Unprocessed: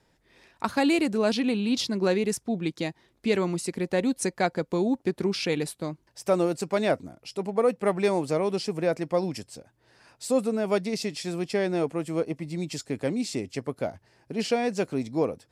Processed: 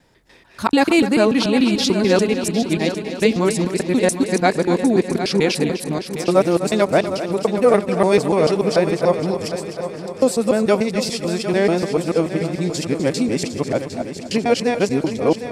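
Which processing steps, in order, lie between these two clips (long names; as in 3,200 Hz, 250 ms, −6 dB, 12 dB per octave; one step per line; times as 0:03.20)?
reversed piece by piece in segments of 146 ms
echo machine with several playback heads 252 ms, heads first and third, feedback 55%, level −11.5 dB
level +8.5 dB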